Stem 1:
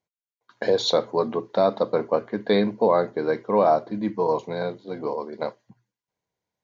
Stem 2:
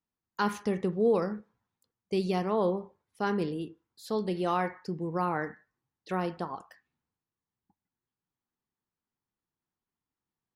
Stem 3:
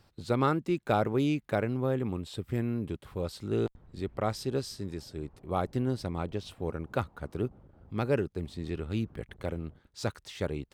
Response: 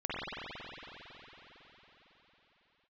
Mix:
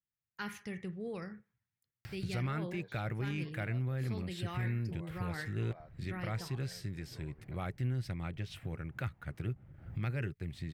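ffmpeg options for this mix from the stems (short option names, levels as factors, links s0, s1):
-filter_complex "[0:a]lowpass=4400,acompressor=threshold=0.0178:ratio=2,adelay=2100,volume=0.133[s0];[1:a]adynamicequalizer=threshold=0.00501:dfrequency=2600:dqfactor=0.7:tfrequency=2600:tqfactor=0.7:attack=5:release=100:ratio=0.375:range=2.5:mode=boostabove:tftype=highshelf,volume=0.376[s1];[2:a]lowshelf=f=130:g=-6,bandreject=f=420:w=12,acompressor=mode=upward:threshold=0.0282:ratio=2.5,adelay=2050,volume=0.708[s2];[s0][s1][s2]amix=inputs=3:normalize=0,equalizer=f=125:t=o:w=1:g=9,equalizer=f=250:t=o:w=1:g=-7,equalizer=f=500:t=o:w=1:g=-7,equalizer=f=1000:t=o:w=1:g=-10,equalizer=f=2000:t=o:w=1:g=9,equalizer=f=4000:t=o:w=1:g=-5,equalizer=f=8000:t=o:w=1:g=-4,alimiter=level_in=1.5:limit=0.0631:level=0:latency=1:release=17,volume=0.668"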